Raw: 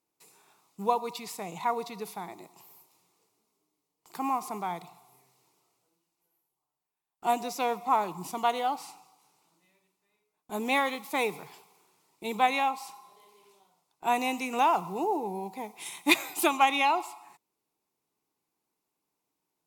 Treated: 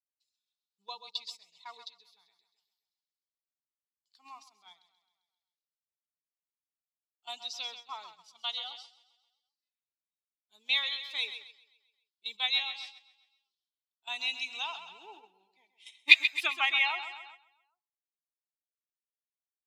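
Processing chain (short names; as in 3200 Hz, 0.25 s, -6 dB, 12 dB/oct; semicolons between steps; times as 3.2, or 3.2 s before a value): per-bin expansion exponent 1.5; on a send: feedback echo 0.132 s, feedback 54%, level -10.5 dB; on the sum: band-pass sweep 3500 Hz -> 1300 Hz, 14.69–18.43; gate -56 dBFS, range -10 dB; bell 4000 Hz +13.5 dB 1.2 oct; gain +2 dB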